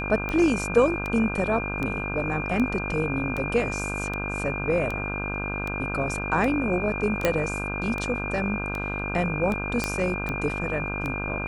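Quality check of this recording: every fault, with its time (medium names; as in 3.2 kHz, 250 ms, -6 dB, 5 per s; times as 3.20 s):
buzz 50 Hz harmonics 32 -32 dBFS
tick 78 rpm -17 dBFS
whine 2.4 kHz -31 dBFS
7.25 s: pop -7 dBFS
9.84 s: pop -10 dBFS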